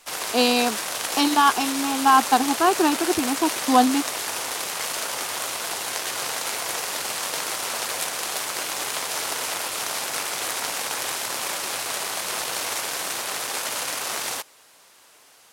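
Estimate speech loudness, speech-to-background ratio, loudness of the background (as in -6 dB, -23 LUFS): -21.0 LUFS, 5.5 dB, -26.5 LUFS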